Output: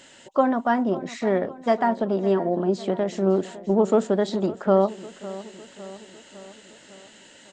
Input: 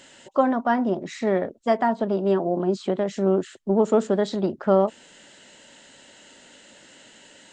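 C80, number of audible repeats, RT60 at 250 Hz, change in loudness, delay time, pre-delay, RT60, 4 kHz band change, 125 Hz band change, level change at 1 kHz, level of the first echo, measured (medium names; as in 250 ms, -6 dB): no reverb, 4, no reverb, 0.0 dB, 555 ms, no reverb, no reverb, 0.0 dB, +0.5 dB, 0.0 dB, -17.0 dB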